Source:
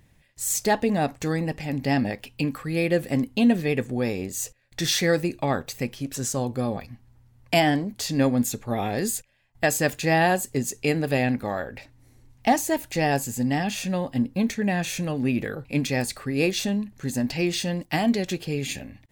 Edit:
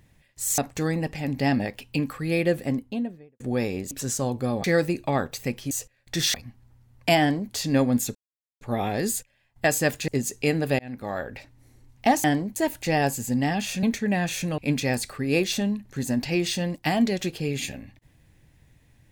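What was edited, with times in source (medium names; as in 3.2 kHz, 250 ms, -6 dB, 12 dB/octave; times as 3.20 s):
0.58–1.03 s: delete
2.84–3.85 s: studio fade out
4.36–4.99 s: swap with 6.06–6.79 s
7.65–7.97 s: copy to 12.65 s
8.60 s: insert silence 0.46 s
10.07–10.49 s: delete
11.20–11.63 s: fade in
13.92–14.39 s: delete
15.14–15.65 s: delete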